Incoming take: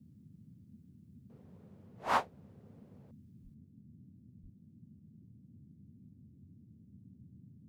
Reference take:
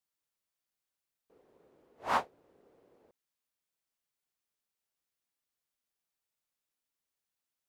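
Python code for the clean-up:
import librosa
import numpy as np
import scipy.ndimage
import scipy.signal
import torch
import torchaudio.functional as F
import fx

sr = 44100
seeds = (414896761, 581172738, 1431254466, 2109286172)

y = fx.highpass(x, sr, hz=140.0, slope=24, at=(3.43, 3.55), fade=0.02)
y = fx.highpass(y, sr, hz=140.0, slope=24, at=(4.42, 4.54), fade=0.02)
y = fx.noise_reduce(y, sr, print_start_s=4.51, print_end_s=5.01, reduce_db=30.0)
y = fx.gain(y, sr, db=fx.steps((0.0, 0.0), (3.54, 10.0)))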